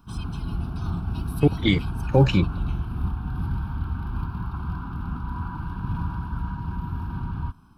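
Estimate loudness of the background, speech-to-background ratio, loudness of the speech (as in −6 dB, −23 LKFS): −31.0 LKFS, 8.5 dB, −22.5 LKFS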